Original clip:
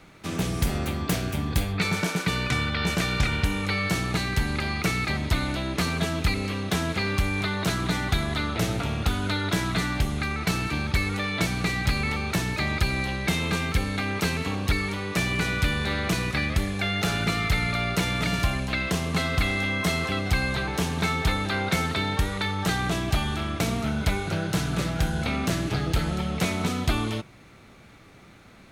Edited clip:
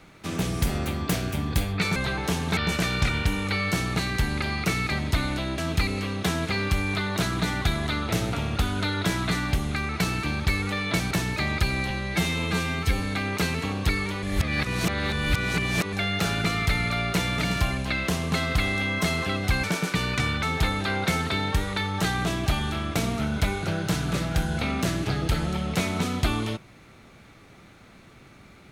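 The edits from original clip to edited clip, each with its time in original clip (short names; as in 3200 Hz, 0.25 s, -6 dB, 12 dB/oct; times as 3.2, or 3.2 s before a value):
1.96–2.75 swap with 20.46–21.07
5.76–6.05 cut
11.58–12.31 cut
13.1–13.85 stretch 1.5×
15.05–16.75 reverse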